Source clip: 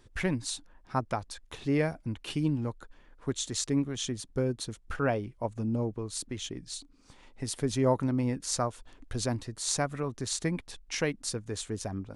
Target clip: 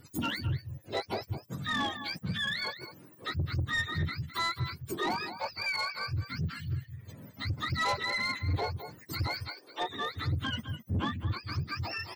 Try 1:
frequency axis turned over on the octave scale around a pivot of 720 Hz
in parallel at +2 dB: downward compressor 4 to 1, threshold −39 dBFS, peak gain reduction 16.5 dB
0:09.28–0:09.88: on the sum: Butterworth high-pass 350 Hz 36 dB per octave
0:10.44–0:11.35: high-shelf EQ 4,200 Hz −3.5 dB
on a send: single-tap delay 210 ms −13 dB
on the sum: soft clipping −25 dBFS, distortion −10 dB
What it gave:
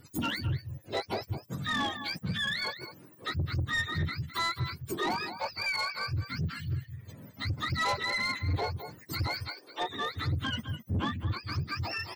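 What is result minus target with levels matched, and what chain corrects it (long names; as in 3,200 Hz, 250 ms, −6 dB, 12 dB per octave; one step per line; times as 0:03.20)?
downward compressor: peak gain reduction −5 dB
frequency axis turned over on the octave scale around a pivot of 720 Hz
in parallel at +2 dB: downward compressor 4 to 1, threshold −45.5 dBFS, peak gain reduction 21.5 dB
0:09.28–0:09.88: on the sum: Butterworth high-pass 350 Hz 36 dB per octave
0:10.44–0:11.35: high-shelf EQ 4,200 Hz −3.5 dB
on a send: single-tap delay 210 ms −13 dB
on the sum: soft clipping −25 dBFS, distortion −11 dB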